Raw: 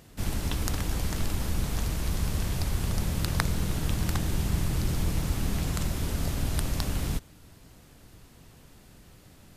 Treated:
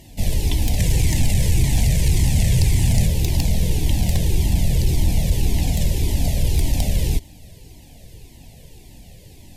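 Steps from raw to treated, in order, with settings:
0:00.79–0:03.07: octave-band graphic EQ 125/2,000/8,000 Hz +9/+6/+6 dB
sine wavefolder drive 13 dB, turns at −3.5 dBFS
Butterworth band-reject 1,300 Hz, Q 1.1
flanger whose copies keep moving one way falling 1.8 Hz
level −4 dB

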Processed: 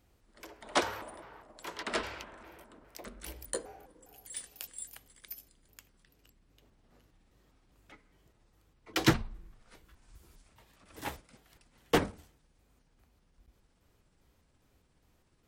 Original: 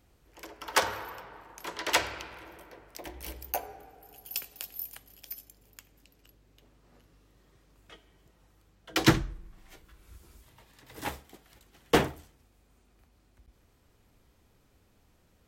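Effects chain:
pitch shifter gated in a rhythm −7 semitones, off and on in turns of 203 ms
level −3.5 dB

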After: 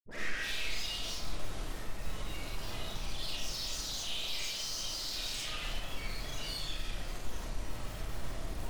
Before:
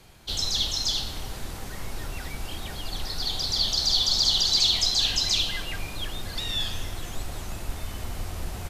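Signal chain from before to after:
turntable start at the beginning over 0.74 s
brickwall limiter −19.5 dBFS, peak gain reduction 9 dB
soft clipping −34.5 dBFS, distortion −8 dB
granular cloud, pitch spread up and down by 7 semitones
comb and all-pass reverb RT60 1.1 s, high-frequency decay 0.65×, pre-delay 10 ms, DRR −9 dB
level −8.5 dB

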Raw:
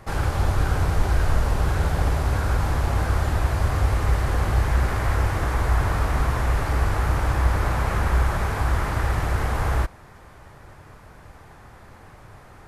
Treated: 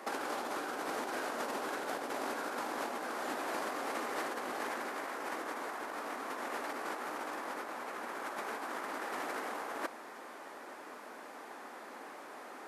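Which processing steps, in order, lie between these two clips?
elliptic high-pass filter 250 Hz, stop band 70 dB
compressor whose output falls as the input rises −34 dBFS, ratio −0.5
level −3.5 dB

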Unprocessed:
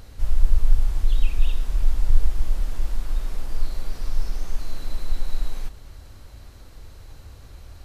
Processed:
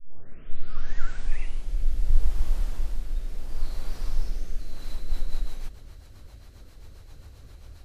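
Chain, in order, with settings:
turntable start at the beginning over 1.95 s
rotating-speaker cabinet horn 0.7 Hz, later 7.5 Hz, at 0:04.59
level −2 dB

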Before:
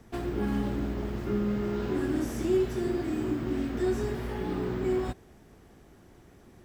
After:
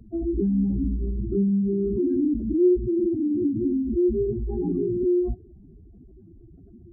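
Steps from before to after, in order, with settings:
expanding power law on the bin magnitudes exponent 3.5
wrong playback speed 25 fps video run at 24 fps
level +7 dB

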